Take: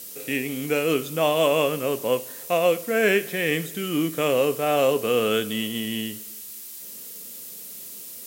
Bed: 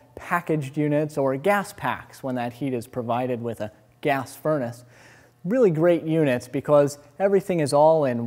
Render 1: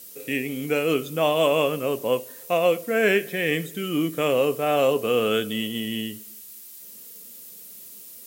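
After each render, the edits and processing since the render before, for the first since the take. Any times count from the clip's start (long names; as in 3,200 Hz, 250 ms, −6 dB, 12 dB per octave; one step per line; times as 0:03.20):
broadband denoise 6 dB, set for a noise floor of −39 dBFS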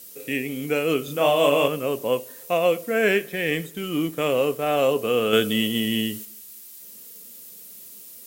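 0:01.04–0:01.68: double-tracking delay 35 ms −3 dB
0:03.10–0:04.82: mu-law and A-law mismatch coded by A
0:05.33–0:06.25: clip gain +5 dB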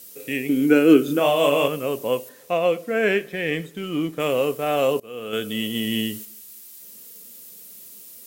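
0:00.49–0:01.20: hollow resonant body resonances 310/1,500 Hz, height 15 dB, ringing for 30 ms
0:02.29–0:04.20: high-shelf EQ 6,900 Hz −11.5 dB
0:05.00–0:05.97: fade in, from −21.5 dB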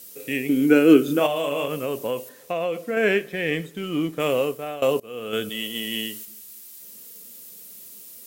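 0:01.26–0:02.97: downward compressor, threshold −21 dBFS
0:04.34–0:04.82: fade out, to −17 dB
0:05.49–0:06.28: high-pass filter 570 Hz 6 dB per octave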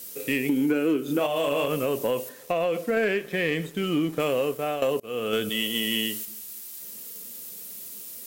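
downward compressor 8 to 1, threshold −24 dBFS, peak gain reduction 15.5 dB
leveller curve on the samples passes 1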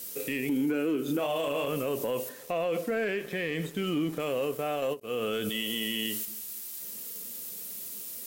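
brickwall limiter −22 dBFS, peak gain reduction 9 dB
every ending faded ahead of time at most 370 dB per second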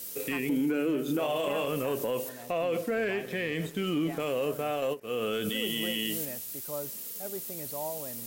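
mix in bed −20.5 dB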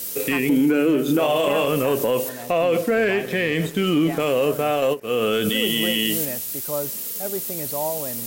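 level +10 dB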